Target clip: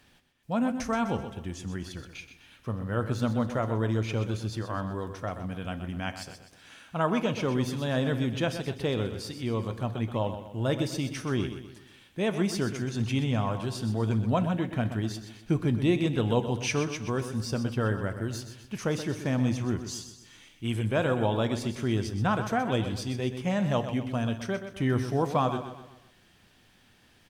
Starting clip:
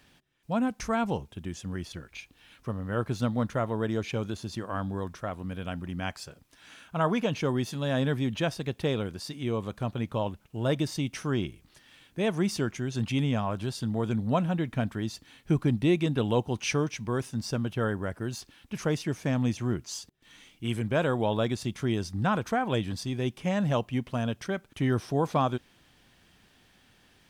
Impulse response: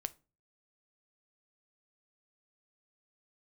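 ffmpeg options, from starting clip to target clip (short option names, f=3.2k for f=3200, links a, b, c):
-filter_complex "[0:a]aecho=1:1:126|252|378|504|630:0.316|0.139|0.0612|0.0269|0.0119[a];[1:a]atrim=start_sample=2205,asetrate=35280,aresample=44100[b];[a][b]afir=irnorm=-1:irlink=0"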